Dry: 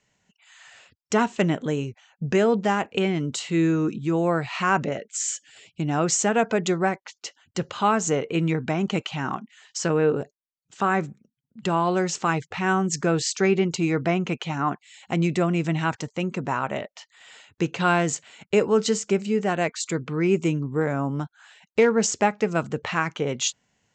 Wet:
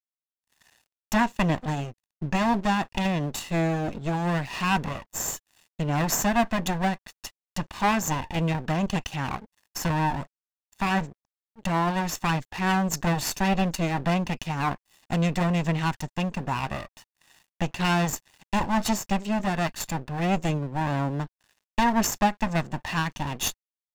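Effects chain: minimum comb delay 1.1 ms; crossover distortion -48.5 dBFS

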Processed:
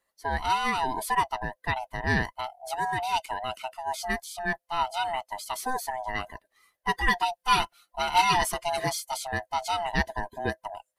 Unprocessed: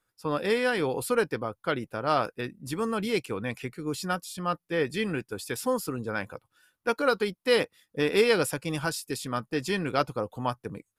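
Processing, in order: band-swap scrambler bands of 500 Hz; 6.94–9.23 comb 5.7 ms, depth 77%

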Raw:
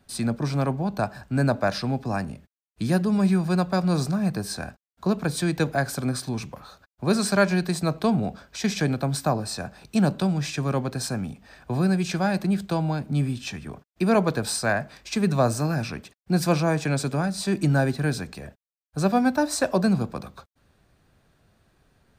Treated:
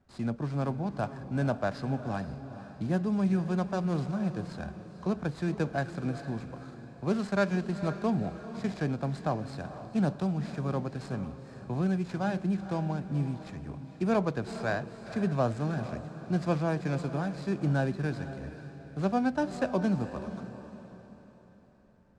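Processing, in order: median filter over 15 samples; LPF 9100 Hz 24 dB/oct; bell 72 Hz +8 dB 0.23 oct; diffused feedback echo 0.479 s, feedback 42%, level -11.5 dB; gain -6.5 dB

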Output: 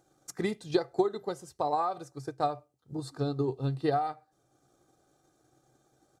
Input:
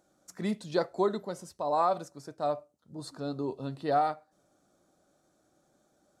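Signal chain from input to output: comb 2.5 ms, depth 50%; compressor 5:1, threshold -27 dBFS, peak gain reduction 7.5 dB; transient shaper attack +6 dB, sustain -3 dB; bell 130 Hz +14 dB 0.28 oct

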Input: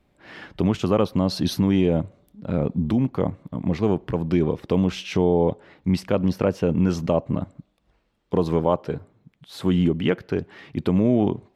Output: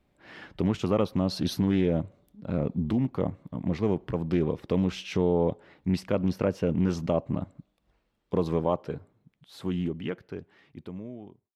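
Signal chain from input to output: ending faded out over 3.10 s; Doppler distortion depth 0.18 ms; gain -5 dB

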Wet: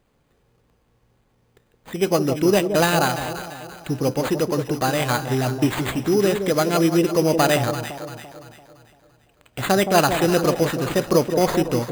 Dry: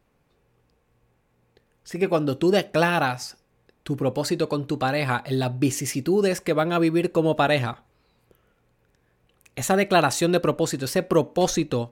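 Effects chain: sample-rate reducer 5500 Hz, jitter 0%; echo with dull and thin repeats by turns 0.17 s, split 860 Hz, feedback 64%, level -7 dB; gain +2 dB

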